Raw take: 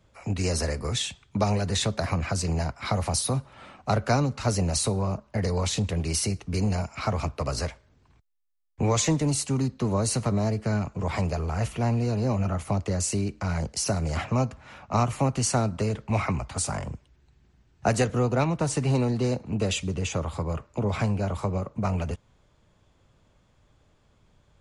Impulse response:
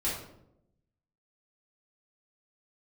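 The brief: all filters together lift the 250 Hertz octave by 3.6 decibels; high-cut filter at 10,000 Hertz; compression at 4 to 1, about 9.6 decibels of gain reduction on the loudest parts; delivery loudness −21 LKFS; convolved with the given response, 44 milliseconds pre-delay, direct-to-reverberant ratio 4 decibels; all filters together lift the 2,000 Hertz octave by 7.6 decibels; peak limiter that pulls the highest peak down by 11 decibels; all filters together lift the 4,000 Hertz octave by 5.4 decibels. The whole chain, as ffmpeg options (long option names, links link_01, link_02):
-filter_complex "[0:a]lowpass=10000,equalizer=frequency=250:width_type=o:gain=4.5,equalizer=frequency=2000:width_type=o:gain=8.5,equalizer=frequency=4000:width_type=o:gain=4.5,acompressor=threshold=-28dB:ratio=4,alimiter=limit=-24dB:level=0:latency=1,asplit=2[link_01][link_02];[1:a]atrim=start_sample=2205,adelay=44[link_03];[link_02][link_03]afir=irnorm=-1:irlink=0,volume=-10.5dB[link_04];[link_01][link_04]amix=inputs=2:normalize=0,volume=10.5dB"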